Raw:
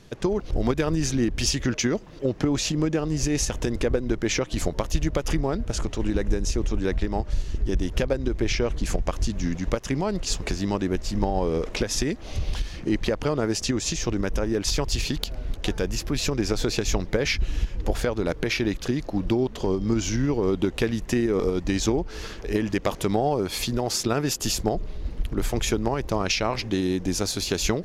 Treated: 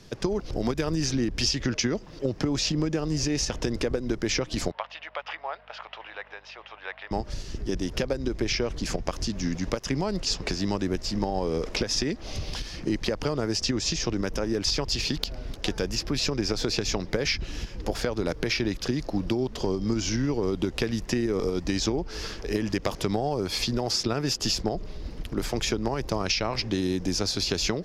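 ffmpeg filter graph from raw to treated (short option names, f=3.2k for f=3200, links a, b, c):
-filter_complex "[0:a]asettb=1/sr,asplit=3[a][b][c];[a]atrim=end=4.714[d];[b]atrim=start=4.71:end=7.11,asetpts=PTS-STARTPTS,afade=t=in:d=0.004:c=qsin,afade=t=out:st=2.396:d=0.004:c=qsin,asuperpass=centerf=1500:order=8:qfactor=0.57,aeval=exprs='val(0)+0.000891*(sin(2*PI*50*n/s)+sin(2*PI*2*50*n/s)/2+sin(2*PI*3*50*n/s)/3+sin(2*PI*4*50*n/s)/4+sin(2*PI*5*50*n/s)/5)':c=same[e];[c]atrim=start=7.106[f];[d][e]acrossfade=d=0.004:c1=hsin:c2=qsin[g];[g][f]acrossfade=d=0.004:c1=qsin:c2=hsin,equalizer=f=5.1k:t=o:w=0.4:g=8,acrossover=split=120|6100[h][i][j];[h]acompressor=threshold=-33dB:ratio=4[k];[i]acompressor=threshold=-23dB:ratio=4[l];[j]acompressor=threshold=-44dB:ratio=4[m];[k][l][m]amix=inputs=3:normalize=0"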